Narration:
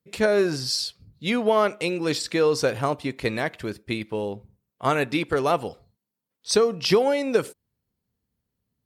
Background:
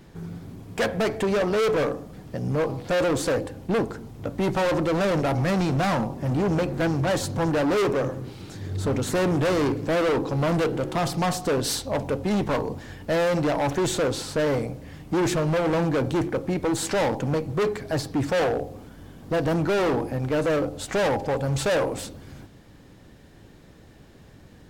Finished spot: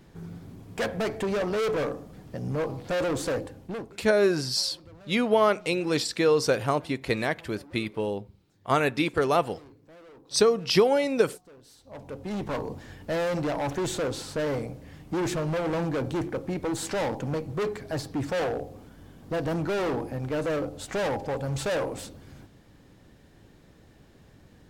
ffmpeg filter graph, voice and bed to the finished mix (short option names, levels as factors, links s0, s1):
-filter_complex "[0:a]adelay=3850,volume=0.891[s0];[1:a]volume=8.91,afade=t=out:st=3.36:d=0.67:silence=0.0630957,afade=t=in:st=11.77:d=0.89:silence=0.0668344[s1];[s0][s1]amix=inputs=2:normalize=0"